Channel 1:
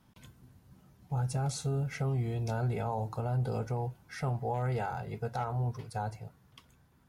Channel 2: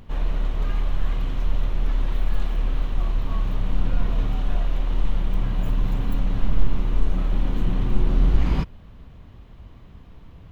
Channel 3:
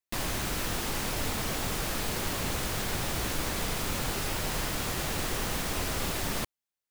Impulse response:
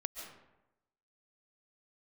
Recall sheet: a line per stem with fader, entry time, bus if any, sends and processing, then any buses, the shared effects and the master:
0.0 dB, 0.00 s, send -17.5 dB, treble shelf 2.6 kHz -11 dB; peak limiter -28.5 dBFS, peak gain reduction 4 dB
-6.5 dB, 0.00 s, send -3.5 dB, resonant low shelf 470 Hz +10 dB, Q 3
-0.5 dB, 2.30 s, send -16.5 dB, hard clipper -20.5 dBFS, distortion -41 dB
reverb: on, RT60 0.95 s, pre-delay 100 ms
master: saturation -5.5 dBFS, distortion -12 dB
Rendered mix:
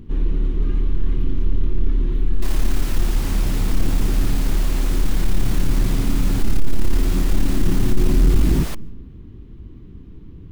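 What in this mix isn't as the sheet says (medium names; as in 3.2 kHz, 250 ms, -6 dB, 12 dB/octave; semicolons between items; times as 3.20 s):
stem 1: muted; reverb return -9.0 dB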